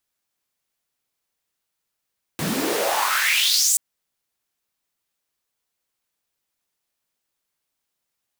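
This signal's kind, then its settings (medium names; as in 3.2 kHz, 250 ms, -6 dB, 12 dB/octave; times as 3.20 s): swept filtered noise pink, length 1.38 s highpass, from 150 Hz, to 8.3 kHz, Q 4.8, exponential, gain ramp +9 dB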